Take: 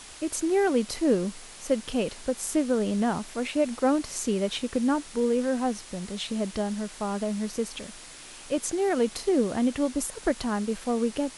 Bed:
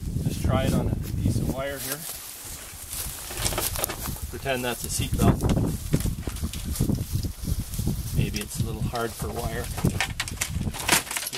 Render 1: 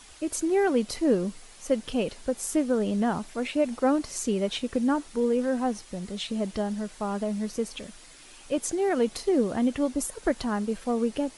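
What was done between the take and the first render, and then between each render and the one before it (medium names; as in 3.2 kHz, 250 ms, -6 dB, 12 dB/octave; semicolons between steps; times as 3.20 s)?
noise reduction 7 dB, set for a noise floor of -45 dBFS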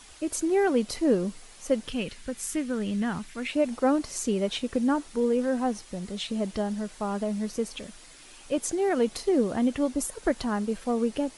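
1.89–3.50 s: FFT filter 170 Hz 0 dB, 660 Hz -10 dB, 1.9 kHz +3 dB, 2.7 kHz +2 dB, 4.9 kHz -1 dB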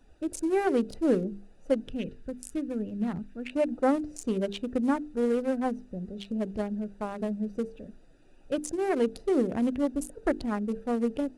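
local Wiener filter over 41 samples; hum notches 50/100/150/200/250/300/350/400/450 Hz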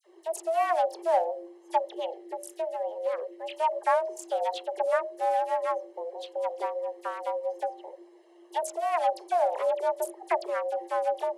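frequency shift +330 Hz; phase dispersion lows, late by 45 ms, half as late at 2.8 kHz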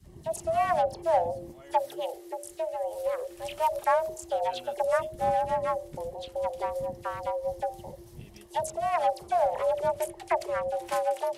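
add bed -21.5 dB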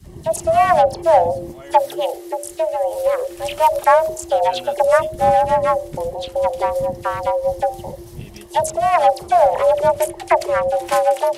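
trim +12 dB; peak limiter -2 dBFS, peak gain reduction 1 dB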